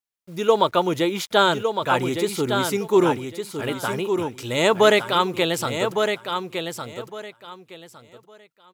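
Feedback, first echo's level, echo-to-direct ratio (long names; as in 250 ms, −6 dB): 21%, −6.5 dB, −6.5 dB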